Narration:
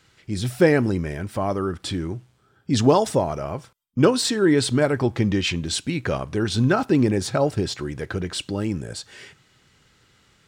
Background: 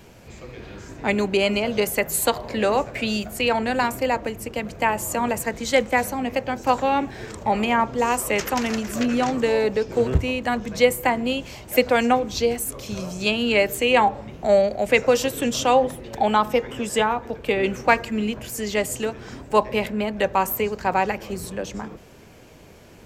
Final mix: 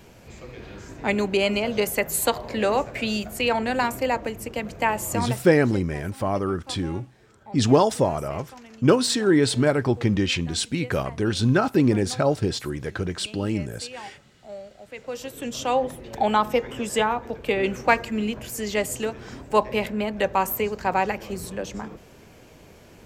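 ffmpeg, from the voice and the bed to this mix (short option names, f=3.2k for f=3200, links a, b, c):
-filter_complex "[0:a]adelay=4850,volume=-0.5dB[a];[1:a]volume=19dB,afade=t=out:st=5.11:d=0.42:silence=0.0944061,afade=t=in:st=14.95:d=1.28:silence=0.0944061[b];[a][b]amix=inputs=2:normalize=0"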